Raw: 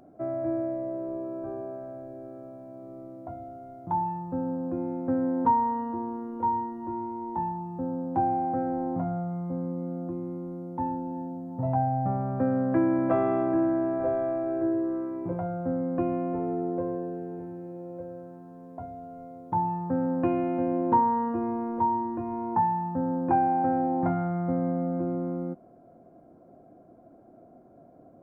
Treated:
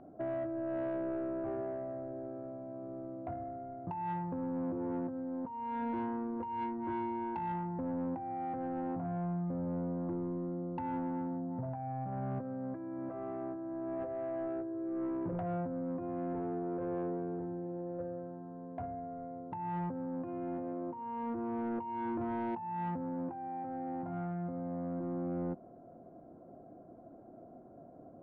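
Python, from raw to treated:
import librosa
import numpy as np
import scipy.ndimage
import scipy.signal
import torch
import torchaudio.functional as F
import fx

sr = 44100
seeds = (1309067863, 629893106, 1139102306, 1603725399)

y = scipy.signal.sosfilt(scipy.signal.butter(2, 1600.0, 'lowpass', fs=sr, output='sos'), x)
y = fx.over_compress(y, sr, threshold_db=-32.0, ratio=-1.0)
y = 10.0 ** (-27.0 / 20.0) * np.tanh(y / 10.0 ** (-27.0 / 20.0))
y = y * librosa.db_to_amplitude(-3.5)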